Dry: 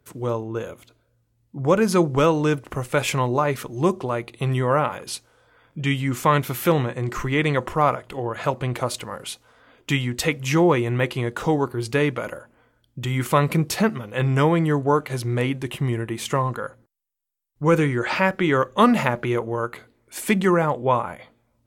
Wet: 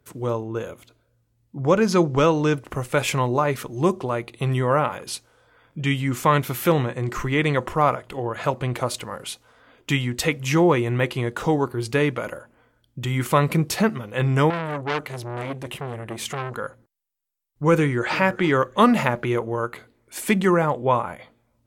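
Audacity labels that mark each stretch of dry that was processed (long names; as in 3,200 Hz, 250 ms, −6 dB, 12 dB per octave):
1.610000	2.580000	high shelf with overshoot 7,600 Hz −6 dB, Q 1.5
14.500000	16.560000	saturating transformer saturates under 2,300 Hz
17.760000	18.170000	delay throw 340 ms, feedback 15%, level −16.5 dB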